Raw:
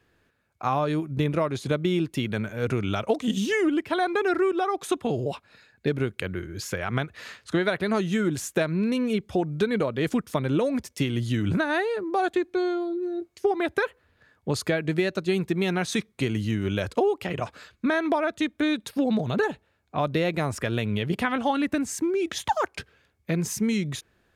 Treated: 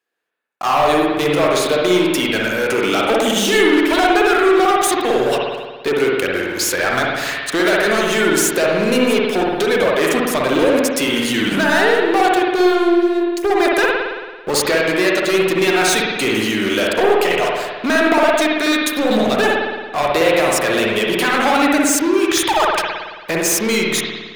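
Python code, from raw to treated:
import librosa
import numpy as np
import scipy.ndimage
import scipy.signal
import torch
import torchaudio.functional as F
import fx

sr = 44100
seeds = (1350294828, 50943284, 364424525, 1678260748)

y = scipy.signal.sosfilt(scipy.signal.butter(2, 430.0, 'highpass', fs=sr, output='sos'), x)
y = fx.high_shelf(y, sr, hz=5400.0, db=9.0)
y = fx.leveller(y, sr, passes=5)
y = fx.rev_spring(y, sr, rt60_s=1.4, pass_ms=(55,), chirp_ms=55, drr_db=-2.5)
y = F.gain(torch.from_numpy(y), -4.0).numpy()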